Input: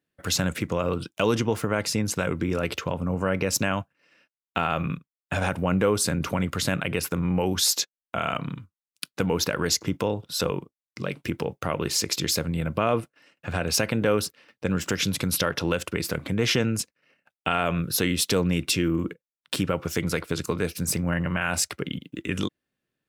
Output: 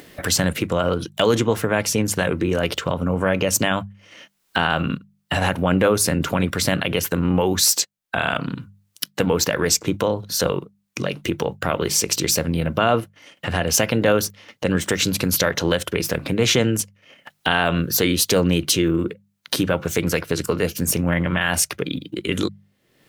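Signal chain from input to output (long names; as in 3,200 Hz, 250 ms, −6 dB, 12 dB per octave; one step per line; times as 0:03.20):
formants moved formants +2 semitones
mains-hum notches 50/100/150/200 Hz
upward compression, threshold −27 dBFS
level +5.5 dB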